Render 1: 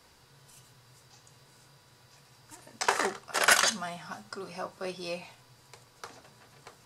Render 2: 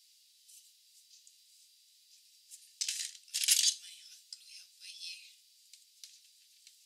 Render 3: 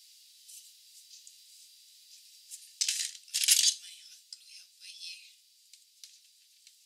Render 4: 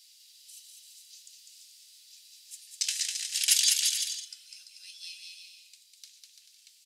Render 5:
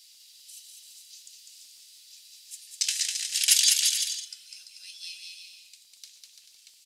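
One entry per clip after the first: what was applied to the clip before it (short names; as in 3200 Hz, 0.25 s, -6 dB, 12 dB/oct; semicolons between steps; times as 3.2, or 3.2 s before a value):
inverse Chebyshev high-pass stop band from 1200 Hz, stop band 50 dB
vocal rider within 3 dB 2 s; gain +4 dB
bouncing-ball echo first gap 0.2 s, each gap 0.7×, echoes 5
crackle 44/s -57 dBFS; gain +3 dB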